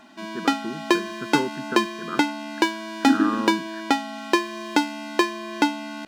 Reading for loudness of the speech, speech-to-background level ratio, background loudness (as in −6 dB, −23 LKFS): −28.5 LKFS, −3.5 dB, −25.0 LKFS